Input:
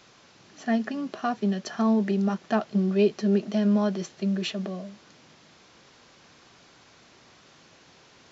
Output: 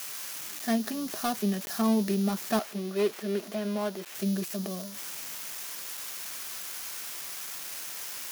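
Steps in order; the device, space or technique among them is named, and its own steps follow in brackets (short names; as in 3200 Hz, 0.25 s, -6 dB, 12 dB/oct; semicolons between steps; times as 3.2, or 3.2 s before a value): budget class-D amplifier (switching dead time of 0.19 ms; switching spikes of -19 dBFS); 2.59–4.15 tone controls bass -13 dB, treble -7 dB; gain -2.5 dB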